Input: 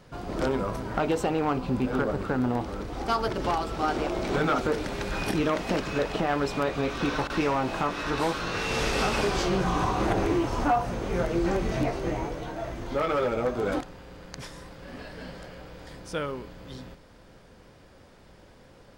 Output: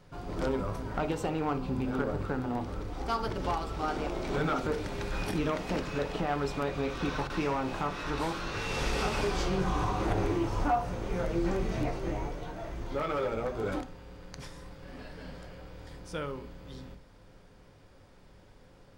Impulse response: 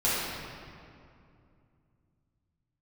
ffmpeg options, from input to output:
-filter_complex "[0:a]asplit=2[link_01][link_02];[1:a]atrim=start_sample=2205,atrim=end_sample=3528,lowshelf=frequency=360:gain=10.5[link_03];[link_02][link_03]afir=irnorm=-1:irlink=0,volume=-20dB[link_04];[link_01][link_04]amix=inputs=2:normalize=0,volume=-6.5dB"

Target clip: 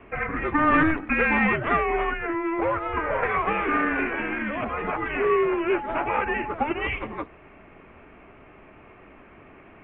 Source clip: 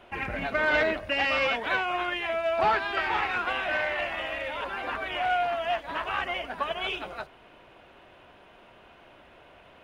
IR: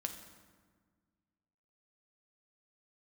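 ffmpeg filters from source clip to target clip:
-filter_complex "[0:a]highpass=frequency=220:width_type=q:width=0.5412,highpass=frequency=220:width_type=q:width=1.307,lowpass=frequency=2900:width_type=q:width=0.5176,lowpass=frequency=2900:width_type=q:width=0.7071,lowpass=frequency=2900:width_type=q:width=1.932,afreqshift=-320,asettb=1/sr,asplit=3[link_01][link_02][link_03];[link_01]atrim=end=2.114[link_04];[link_02]atrim=start=2.11:end=3.23,asetpts=PTS-STARTPTS,afade=type=in:duration=0.004:curve=qsin,afade=type=out:start_time=1.116:duration=0.004:curve=qsin,acrossover=split=630|1900[link_05][link_06][link_07];[link_05]acompressor=threshold=-33dB:ratio=4[link_08];[link_06]acompressor=threshold=-31dB:ratio=4[link_09];[link_07]acompressor=threshold=-51dB:ratio=4[link_10];[link_08][link_09][link_10]amix=inputs=3:normalize=0[link_11];[link_03]atrim=start=3.226[link_12];[link_04][link_11]acrossfade=duration=0.004:curve1=hsin:curve2=qsin[link_13];[link_13][link_12]acrossfade=duration=0.004:curve1=qsin:curve2=hsin,asettb=1/sr,asplit=3[link_14][link_15][link_16];[link_14]atrim=end=5.754[link_17];[link_15]atrim=start=5.75:end=6.54,asetpts=PTS-STARTPTS,afade=type=in:duration=0.004:curve=qsin,afade=type=out:start_time=0.786:duration=0.004:curve=qsin,aeval=exprs='val(0)+0.0158*sin(2*PI*850*n/s)':channel_layout=same[link_18];[link_16]atrim=start=6.536[link_19];[link_17][link_18]acrossfade=duration=0.004:curve1=hsin:curve2=qsin[link_20];[link_20][link_19]acrossfade=duration=0.004:curve1=qsin:curve2=hsin,volume=5dB"

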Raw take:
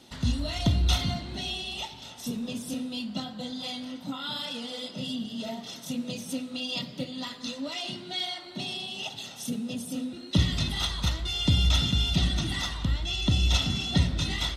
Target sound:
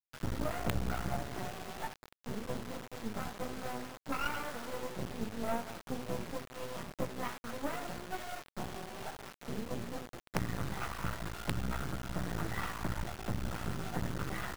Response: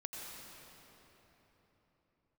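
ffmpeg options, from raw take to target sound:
-filter_complex "[0:a]volume=21.5dB,asoftclip=hard,volume=-21.5dB,highpass=100,equalizer=frequency=260:width_type=o:width=0.39:gain=-9,bandreject=frequency=60:width_type=h:width=6,bandreject=frequency=120:width_type=h:width=6,bandreject=frequency=180:width_type=h:width=6,bandreject=frequency=240:width_type=h:width=6,bandreject=frequency=300:width_type=h:width=6,bandreject=frequency=360:width_type=h:width=6,bandreject=frequency=420:width_type=h:width=6,asplit=2[link_01][link_02];[link_02]adelay=179,lowpass=frequency=860:poles=1,volume=-12.5dB,asplit=2[link_03][link_04];[link_04]adelay=179,lowpass=frequency=860:poles=1,volume=0.32,asplit=2[link_05][link_06];[link_06]adelay=179,lowpass=frequency=860:poles=1,volume=0.32[link_07];[link_03][link_05][link_07]amix=inputs=3:normalize=0[link_08];[link_01][link_08]amix=inputs=2:normalize=0,acompressor=threshold=-33dB:ratio=16,asplit=2[link_09][link_10];[link_10]asplit=5[link_11][link_12][link_13][link_14][link_15];[link_11]adelay=81,afreqshift=-130,volume=-10.5dB[link_16];[link_12]adelay=162,afreqshift=-260,volume=-17.8dB[link_17];[link_13]adelay=243,afreqshift=-390,volume=-25.2dB[link_18];[link_14]adelay=324,afreqshift=-520,volume=-32.5dB[link_19];[link_15]adelay=405,afreqshift=-650,volume=-39.8dB[link_20];[link_16][link_17][link_18][link_19][link_20]amix=inputs=5:normalize=0[link_21];[link_09][link_21]amix=inputs=2:normalize=0,flanger=delay=15.5:depth=2.5:speed=0.84,agate=range=-33dB:threshold=-38dB:ratio=3:detection=peak,highshelf=frequency=2200:width_type=q:width=3:gain=-12,adynamicsmooth=sensitivity=4.5:basefreq=2100,acrusher=bits=6:dc=4:mix=0:aa=0.000001,volume=10dB"

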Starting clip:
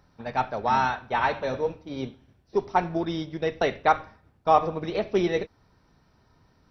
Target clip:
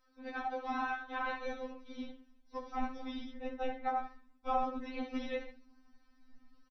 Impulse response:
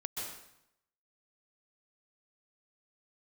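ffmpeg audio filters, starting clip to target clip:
-filter_complex "[0:a]asettb=1/sr,asplit=3[link_01][link_02][link_03];[link_01]atrim=end=3.324[link_04];[link_02]atrim=start=3.32:end=3.99,asetpts=PTS-STARTPTS,afade=type=in:duration=0.004:curve=qsin,afade=type=out:start_time=0.666:duration=0.004:curve=qsin,equalizer=frequency=4400:width_type=o:width=1.9:gain=-13[link_05];[link_03]atrim=start=3.986[link_06];[link_04][link_05]acrossfade=duration=0.004:curve1=hsin:curve2=qsin[link_07];[link_07][link_06]acrossfade=duration=0.004:curve1=qsin:curve2=hsin,asplit=2[link_08][link_09];[link_09]adelay=68,lowpass=frequency=3200:poles=1,volume=-6.5dB,asplit=2[link_10][link_11];[link_11]adelay=68,lowpass=frequency=3200:poles=1,volume=0.28,asplit=2[link_12][link_13];[link_13]adelay=68,lowpass=frequency=3200:poles=1,volume=0.28,asplit=2[link_14][link_15];[link_15]adelay=68,lowpass=frequency=3200:poles=1,volume=0.28[link_16];[link_10][link_12][link_14][link_16]amix=inputs=4:normalize=0[link_17];[link_08][link_17]amix=inputs=2:normalize=0,asubboost=boost=9.5:cutoff=110,afftfilt=real='hypot(re,im)*cos(2*PI*random(0))':imag='hypot(re,im)*sin(2*PI*random(1))':win_size=512:overlap=0.75,acrossover=split=3600[link_18][link_19];[link_19]acompressor=threshold=-59dB:ratio=4:attack=1:release=60[link_20];[link_18][link_20]amix=inputs=2:normalize=0,acrossover=split=260|1000[link_21][link_22][link_23];[link_22]flanger=delay=2.7:depth=9.1:regen=-68:speed=0.93:shape=sinusoidal[link_24];[link_23]alimiter=level_in=4.5dB:limit=-24dB:level=0:latency=1:release=73,volume=-4.5dB[link_25];[link_21][link_24][link_25]amix=inputs=3:normalize=0,afftfilt=real='re*3.46*eq(mod(b,12),0)':imag='im*3.46*eq(mod(b,12),0)':win_size=2048:overlap=0.75"

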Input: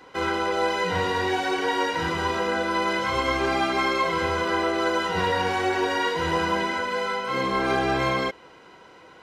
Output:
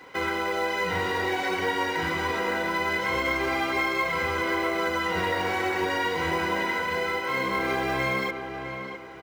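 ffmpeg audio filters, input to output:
ffmpeg -i in.wav -filter_complex "[0:a]highpass=frequency=45:width=0.5412,highpass=frequency=45:width=1.3066,equalizer=frequency=2100:width_type=o:width=0.3:gain=7.5,acompressor=threshold=-27dB:ratio=2,acrusher=bits=6:mode=log:mix=0:aa=0.000001,asplit=2[link_01][link_02];[link_02]adelay=657,lowpass=frequency=2300:poles=1,volume=-7.5dB,asplit=2[link_03][link_04];[link_04]adelay=657,lowpass=frequency=2300:poles=1,volume=0.36,asplit=2[link_05][link_06];[link_06]adelay=657,lowpass=frequency=2300:poles=1,volume=0.36,asplit=2[link_07][link_08];[link_08]adelay=657,lowpass=frequency=2300:poles=1,volume=0.36[link_09];[link_01][link_03][link_05][link_07][link_09]amix=inputs=5:normalize=0" out.wav

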